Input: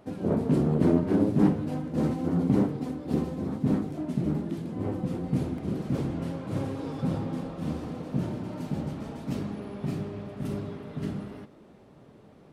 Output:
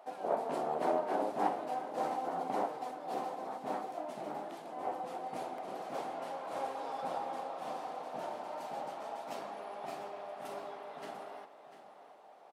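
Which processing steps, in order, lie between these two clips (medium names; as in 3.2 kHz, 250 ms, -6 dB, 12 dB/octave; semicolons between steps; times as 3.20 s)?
resonant high-pass 740 Hz, resonance Q 3.8; delay 695 ms -12.5 dB; trim -3.5 dB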